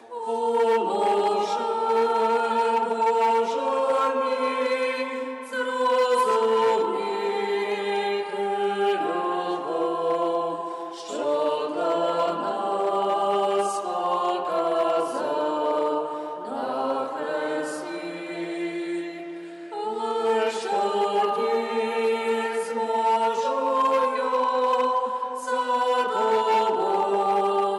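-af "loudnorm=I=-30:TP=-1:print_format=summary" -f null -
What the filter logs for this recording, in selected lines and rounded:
Input Integrated:    -24.3 LUFS
Input True Peak:     -11.6 dBTP
Input LRA:             4.4 LU
Input Threshold:     -34.4 LUFS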